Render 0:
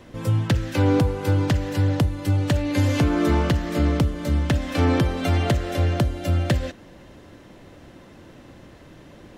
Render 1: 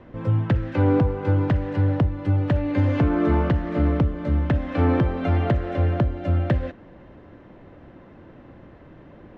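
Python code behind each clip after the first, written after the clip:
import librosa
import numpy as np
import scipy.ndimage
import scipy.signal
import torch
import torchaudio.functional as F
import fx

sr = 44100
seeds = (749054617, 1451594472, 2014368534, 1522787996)

y = scipy.signal.sosfilt(scipy.signal.butter(2, 1800.0, 'lowpass', fs=sr, output='sos'), x)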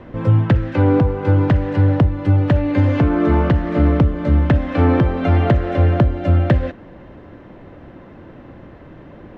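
y = fx.rider(x, sr, range_db=10, speed_s=0.5)
y = F.gain(torch.from_numpy(y), 6.0).numpy()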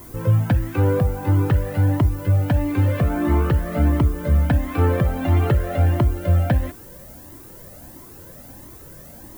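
y = fx.dmg_noise_colour(x, sr, seeds[0], colour='violet', level_db=-40.0)
y = fx.comb_cascade(y, sr, direction='rising', hz=1.5)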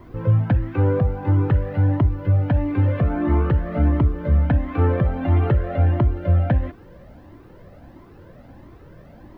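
y = fx.air_absorb(x, sr, metres=340.0)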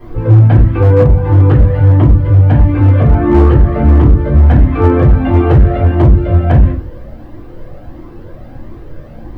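y = fx.room_shoebox(x, sr, seeds[1], volume_m3=130.0, walls='furnished', distance_m=3.8)
y = np.clip(y, -10.0 ** (-2.5 / 20.0), 10.0 ** (-2.5 / 20.0))
y = F.gain(torch.from_numpy(y), 1.0).numpy()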